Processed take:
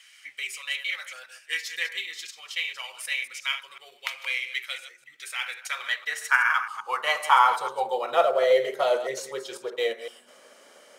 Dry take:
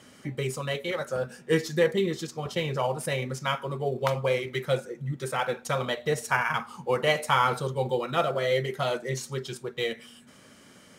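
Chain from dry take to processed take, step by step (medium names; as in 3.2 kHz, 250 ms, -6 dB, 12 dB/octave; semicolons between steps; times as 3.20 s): chunks repeated in reverse 126 ms, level -11.5 dB; de-hum 89.57 Hz, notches 18; high-pass sweep 2.3 kHz -> 550 Hz, 5.42–8.44 s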